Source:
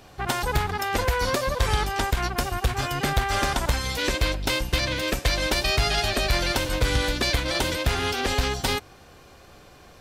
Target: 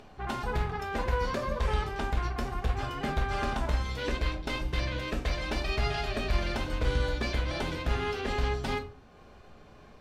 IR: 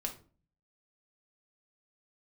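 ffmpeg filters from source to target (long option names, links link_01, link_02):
-filter_complex "[1:a]atrim=start_sample=2205[link_01];[0:a][link_01]afir=irnorm=-1:irlink=0,acompressor=mode=upward:threshold=-39dB:ratio=2.5,aemphasis=mode=reproduction:type=75kf,volume=-6.5dB"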